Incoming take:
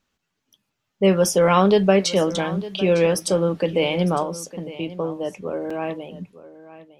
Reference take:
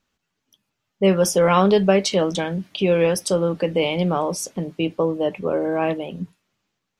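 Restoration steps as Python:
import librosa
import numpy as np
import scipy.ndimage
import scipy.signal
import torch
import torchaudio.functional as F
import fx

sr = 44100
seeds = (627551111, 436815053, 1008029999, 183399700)

y = fx.fix_interpolate(x, sr, at_s=(5.7,), length_ms=4.6)
y = fx.fix_echo_inverse(y, sr, delay_ms=906, level_db=-16.5)
y = fx.gain(y, sr, db=fx.steps((0.0, 0.0), (4.23, 5.5)))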